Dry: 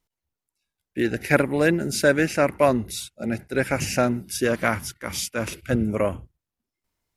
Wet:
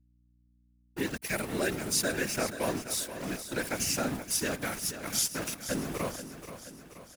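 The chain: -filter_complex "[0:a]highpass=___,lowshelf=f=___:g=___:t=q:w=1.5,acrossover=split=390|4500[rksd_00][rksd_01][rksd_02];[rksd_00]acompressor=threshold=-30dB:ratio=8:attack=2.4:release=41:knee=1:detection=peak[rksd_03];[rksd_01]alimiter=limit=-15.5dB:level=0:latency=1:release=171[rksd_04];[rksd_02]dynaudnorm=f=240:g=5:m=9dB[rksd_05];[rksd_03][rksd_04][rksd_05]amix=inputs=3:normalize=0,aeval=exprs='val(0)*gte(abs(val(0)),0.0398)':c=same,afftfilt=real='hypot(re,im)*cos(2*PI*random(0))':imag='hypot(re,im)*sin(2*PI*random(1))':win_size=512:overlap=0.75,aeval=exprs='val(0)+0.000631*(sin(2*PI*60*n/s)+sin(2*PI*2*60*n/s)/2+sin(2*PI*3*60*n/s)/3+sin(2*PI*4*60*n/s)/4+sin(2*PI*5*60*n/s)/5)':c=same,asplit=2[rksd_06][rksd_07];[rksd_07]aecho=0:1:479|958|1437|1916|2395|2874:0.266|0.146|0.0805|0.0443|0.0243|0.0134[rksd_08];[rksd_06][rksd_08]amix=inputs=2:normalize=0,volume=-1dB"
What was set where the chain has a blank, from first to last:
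150, 320, 8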